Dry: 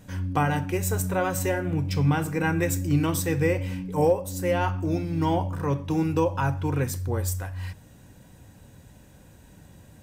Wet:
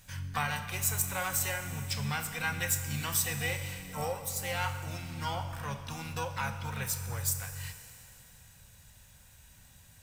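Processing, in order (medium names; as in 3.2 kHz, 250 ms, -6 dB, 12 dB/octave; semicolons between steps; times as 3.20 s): amplifier tone stack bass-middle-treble 10-0-10; harmony voices +7 st -8 dB; Schroeder reverb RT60 3 s, combs from 27 ms, DRR 9 dB; trim +2 dB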